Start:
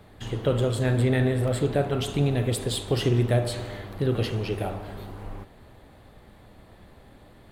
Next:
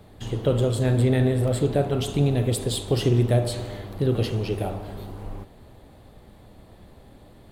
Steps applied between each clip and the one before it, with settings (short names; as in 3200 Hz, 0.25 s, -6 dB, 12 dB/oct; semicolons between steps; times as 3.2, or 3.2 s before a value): bell 1700 Hz -6 dB 1.6 oct; gain +2.5 dB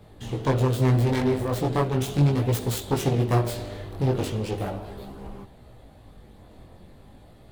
self-modulated delay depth 0.56 ms; chorus voices 2, 0.38 Hz, delay 19 ms, depth 4.3 ms; gain +2 dB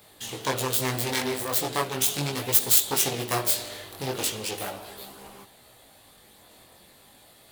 tilt +4.5 dB/oct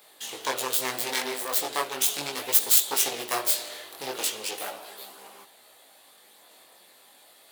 Bessel high-pass 490 Hz, order 2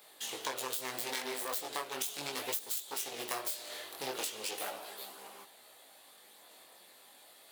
compressor 12:1, threshold -30 dBFS, peak gain reduction 17 dB; gain -3 dB